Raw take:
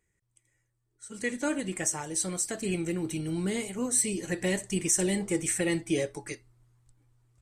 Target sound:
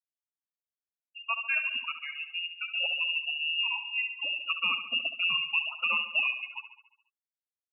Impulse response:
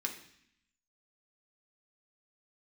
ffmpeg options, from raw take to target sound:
-filter_complex "[0:a]afftfilt=real='re*gte(hypot(re,im),0.0501)':imag='im*gte(hypot(re,im),0.0501)':win_size=1024:overlap=0.75,asetrate=42336,aresample=44100,asplit=2[a][b];[b]aecho=0:1:70|140|210|280|350|420|490:0.299|0.173|0.1|0.0582|0.0338|0.0196|0.0114[c];[a][c]amix=inputs=2:normalize=0,lowpass=f=2.6k:t=q:w=0.5098,lowpass=f=2.6k:t=q:w=0.6013,lowpass=f=2.6k:t=q:w=0.9,lowpass=f=2.6k:t=q:w=2.563,afreqshift=-3000"

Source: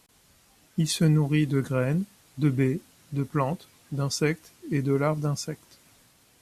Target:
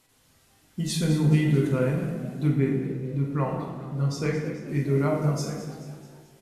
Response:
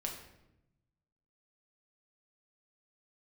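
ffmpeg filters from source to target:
-filter_complex "[0:a]asettb=1/sr,asplit=3[a][b][c];[a]atrim=end=2.474[d];[b]atrim=start=2.47:end=4.68,asetpts=PTS-STARTPTS,afade=t=in:d=0.004:c=qsin,afade=t=out:st=2.206:d=0.004:c=qsin,highshelf=f=4.2k:g=-9.5[e];[c]atrim=start=4.676[f];[d][e]acrossfade=d=0.004:c1=hsin:c2=qsin[g];[g][f]acrossfade=d=0.004:c1=qsin:c2=hsin,asplit=6[h][i][j][k][l][m];[i]adelay=215,afreqshift=58,volume=-13dB[n];[j]adelay=430,afreqshift=116,volume=-18.8dB[o];[k]adelay=645,afreqshift=174,volume=-24.7dB[p];[l]adelay=860,afreqshift=232,volume=-30.5dB[q];[m]adelay=1075,afreqshift=290,volume=-36.4dB[r];[h][n][o][p][q][r]amix=inputs=6:normalize=0[s];[1:a]atrim=start_sample=2205,asetrate=29988,aresample=44100[t];[s][t]afir=irnorm=-1:irlink=0,volume=-4dB"

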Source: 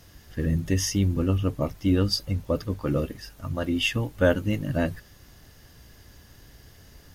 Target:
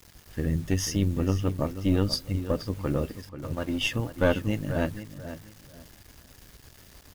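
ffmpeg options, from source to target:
-filter_complex "[0:a]asettb=1/sr,asplit=3[a][b][c];[a]atrim=end=3.214[d];[b]atrim=start=3.21:end=3.78,asetpts=PTS-STARTPTS,afade=t=in:d=0.004:c=qsin,afade=t=out:st=0.566:d=0.004:c=qsin,aeval=exprs='sgn(val(0))*max(abs(val(0))-0.00668,0)':c=same[e];[c]atrim=start=3.776[f];[d][e]acrossfade=d=0.004:c1=hsin:c2=qsin[g];[g][f]acrossfade=d=0.004:c1=qsin:c2=hsin,acrusher=bits=7:mix=0:aa=0.000001,asplit=2[h][i];[i]adelay=486,lowpass=f=3.4k:p=1,volume=-11dB,asplit=2[j][k];[k]adelay=486,lowpass=f=3.4k:p=1,volume=0.25,asplit=2[l][m];[m]adelay=486,lowpass=f=3.4k:p=1,volume=0.25[n];[h][j][l][n]amix=inputs=4:normalize=0,aeval=exprs='0.422*(cos(1*acos(clip(val(0)/0.422,-1,1)))-cos(1*PI/2))+0.0531*(cos(4*acos(clip(val(0)/0.422,-1,1)))-cos(4*PI/2))':c=same,volume=-3dB"

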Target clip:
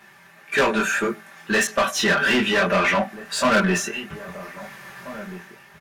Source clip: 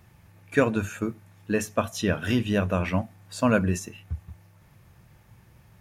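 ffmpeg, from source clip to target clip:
-filter_complex "[0:a]highpass=f=170:p=1,equalizer=f=1.7k:t=o:w=0.59:g=6.5,aecho=1:1:5.1:0.99,dynaudnorm=f=150:g=9:m=9.5dB,asoftclip=type=hard:threshold=-12.5dB,flanger=delay=19:depth=4.1:speed=1.7,asplit=2[a][b];[b]highpass=f=720:p=1,volume=18dB,asoftclip=type=tanh:threshold=-11.5dB[c];[a][c]amix=inputs=2:normalize=0,lowpass=f=5.7k:p=1,volume=-6dB,asplit=2[d][e];[e]adelay=1633,volume=-15dB,highshelf=f=4k:g=-36.7[f];[d][f]amix=inputs=2:normalize=0,asettb=1/sr,asplit=3[g][h][i];[g]atrim=end=1.674[j];[h]atrim=start=1.67:end=3.93,asetpts=PTS-STARTPTS,afade=t=in:d=0.004:c=qsin,afade=t=out:st=2.256:d=0.004:c=qsin,adynamicequalizer=threshold=0.02:dfrequency=5100:dqfactor=0.7:tfrequency=5100:tqfactor=0.7:attack=5:release=100:ratio=0.375:range=2.5:mode=cutabove:tftype=highshelf[k];[i]atrim=start=3.926[l];[j][k]acrossfade=d=0.004:c1=hsin:c2=qsin[m];[m][l]acrossfade=d=0.004:c1=qsin:c2=hsin"

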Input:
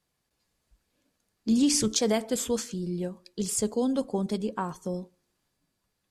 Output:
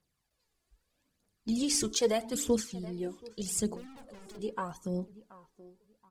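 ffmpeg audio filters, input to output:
-filter_complex "[0:a]asettb=1/sr,asplit=3[a][b][c];[a]atrim=end=3.764[d];[b]atrim=start=3.76:end=4.39,asetpts=PTS-STARTPTS,afade=t=in:d=0.004:c=qsin,afade=t=out:st=0.626:d=0.004:c=qsin,aeval=exprs='(tanh(178*val(0)+0.15)-tanh(0.15))/178':c=same[e];[c]atrim=start=4.386[f];[d][e]acrossfade=d=0.004:c1=hsin:c2=qsin[g];[g][f]acrossfade=d=0.004:c1=qsin:c2=hsin,asplit=2[h][i];[i]adelay=728,lowpass=f=1.8k:p=1,volume=-17dB,asplit=2[j][k];[k]adelay=728,lowpass=f=1.8k:p=1,volume=0.27,asplit=2[l][m];[m]adelay=728,lowpass=f=1.8k:p=1,volume=0.27[n];[j][l][n]amix=inputs=3:normalize=0[o];[h][o]amix=inputs=2:normalize=0,aphaser=in_gain=1:out_gain=1:delay=3:decay=0.57:speed=0.8:type=triangular,volume=-5dB"

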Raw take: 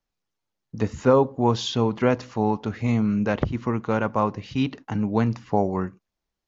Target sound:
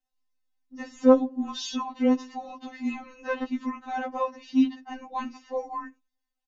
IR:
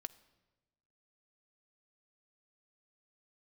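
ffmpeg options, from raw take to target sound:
-af "aecho=1:1:1.1:0.38,afftfilt=real='re*3.46*eq(mod(b,12),0)':imag='im*3.46*eq(mod(b,12),0)':win_size=2048:overlap=0.75,volume=-2.5dB"

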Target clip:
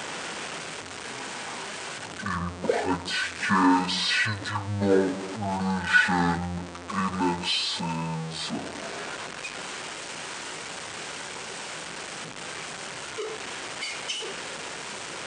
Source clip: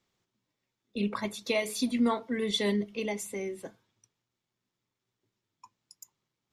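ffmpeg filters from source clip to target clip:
-af "aeval=exprs='val(0)+0.5*0.0168*sgn(val(0))':c=same,highpass=610,asetrate=18846,aresample=44100,volume=8.5dB"

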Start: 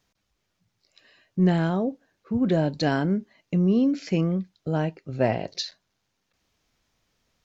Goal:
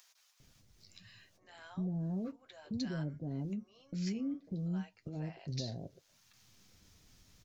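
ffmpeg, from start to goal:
-filter_complex "[0:a]bass=f=250:g=9,treble=f=4k:g=8,acompressor=threshold=-30dB:ratio=4,alimiter=level_in=1.5dB:limit=-24dB:level=0:latency=1:release=121,volume=-1.5dB,acompressor=mode=upward:threshold=-46dB:ratio=2.5,flanger=delay=7.2:depth=4:regen=-45:speed=0.37:shape=triangular,acrossover=split=750[a][b];[a]adelay=400[c];[c][b]amix=inputs=2:normalize=0,volume=-2dB"

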